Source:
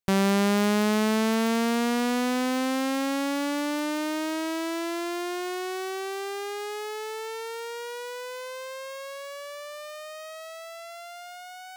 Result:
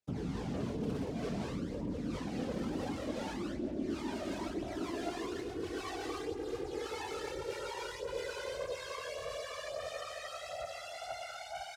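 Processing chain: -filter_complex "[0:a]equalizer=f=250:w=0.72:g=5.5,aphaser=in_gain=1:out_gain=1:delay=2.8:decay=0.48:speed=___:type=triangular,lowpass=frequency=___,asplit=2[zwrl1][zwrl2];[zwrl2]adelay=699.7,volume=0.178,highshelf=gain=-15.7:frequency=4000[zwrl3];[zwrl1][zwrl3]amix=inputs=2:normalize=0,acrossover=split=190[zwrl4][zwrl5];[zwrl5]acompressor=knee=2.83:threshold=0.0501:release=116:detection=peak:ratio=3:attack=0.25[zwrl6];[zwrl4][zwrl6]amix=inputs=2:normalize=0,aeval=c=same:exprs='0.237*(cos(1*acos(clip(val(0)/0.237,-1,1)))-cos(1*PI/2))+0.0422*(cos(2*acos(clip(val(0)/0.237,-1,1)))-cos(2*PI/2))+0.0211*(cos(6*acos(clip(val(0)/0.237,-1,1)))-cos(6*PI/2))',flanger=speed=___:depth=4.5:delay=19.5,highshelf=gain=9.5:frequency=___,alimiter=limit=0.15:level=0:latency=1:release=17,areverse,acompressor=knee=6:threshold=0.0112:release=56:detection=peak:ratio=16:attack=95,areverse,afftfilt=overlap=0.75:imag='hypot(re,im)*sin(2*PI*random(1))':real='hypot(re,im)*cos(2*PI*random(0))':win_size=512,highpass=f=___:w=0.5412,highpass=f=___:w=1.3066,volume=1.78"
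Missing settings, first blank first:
0.54, 5800, 1.7, 4400, 43, 43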